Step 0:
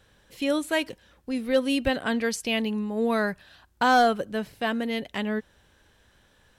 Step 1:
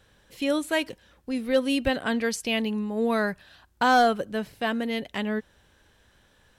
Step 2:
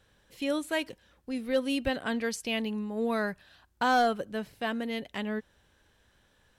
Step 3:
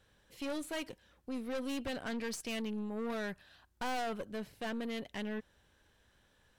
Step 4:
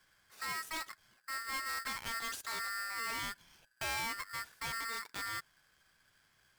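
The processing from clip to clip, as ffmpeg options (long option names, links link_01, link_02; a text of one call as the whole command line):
ffmpeg -i in.wav -af anull out.wav
ffmpeg -i in.wav -af "aeval=exprs='0.251*(cos(1*acos(clip(val(0)/0.251,-1,1)))-cos(1*PI/2))+0.00562*(cos(5*acos(clip(val(0)/0.251,-1,1)))-cos(5*PI/2))+0.00447*(cos(7*acos(clip(val(0)/0.251,-1,1)))-cos(7*PI/2))':channel_layout=same,volume=-5dB" out.wav
ffmpeg -i in.wav -af "aeval=exprs='(tanh(44.7*val(0)+0.45)-tanh(0.45))/44.7':channel_layout=same,volume=-1.5dB" out.wav
ffmpeg -i in.wav -af "aeval=exprs='val(0)*sgn(sin(2*PI*1600*n/s))':channel_layout=same,volume=-1.5dB" out.wav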